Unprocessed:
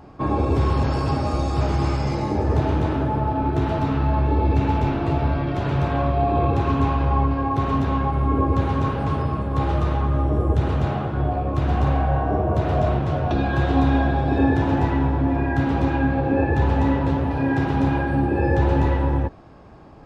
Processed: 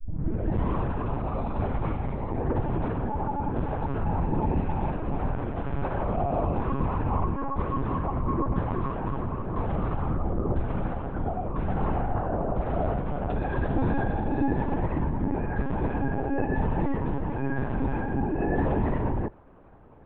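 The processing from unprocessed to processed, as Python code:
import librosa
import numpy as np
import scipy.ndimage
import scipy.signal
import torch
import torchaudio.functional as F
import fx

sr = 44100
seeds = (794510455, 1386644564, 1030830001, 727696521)

y = fx.tape_start_head(x, sr, length_s=0.72)
y = scipy.signal.sosfilt(scipy.signal.butter(2, 2100.0, 'lowpass', fs=sr, output='sos'), y)
y = fx.lpc_vocoder(y, sr, seeds[0], excitation='pitch_kept', order=10)
y = y * 10.0 ** (-6.5 / 20.0)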